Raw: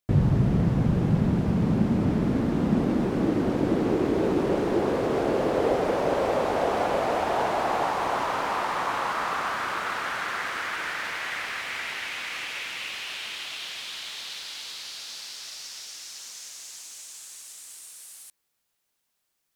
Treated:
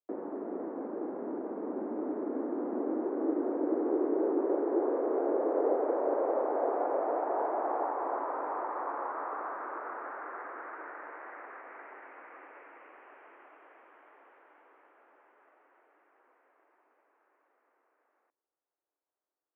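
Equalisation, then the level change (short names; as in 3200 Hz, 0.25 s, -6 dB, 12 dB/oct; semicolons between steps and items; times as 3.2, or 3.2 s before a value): Gaussian blur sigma 6.6 samples; steep high-pass 290 Hz 48 dB/oct; air absorption 300 m; -2.5 dB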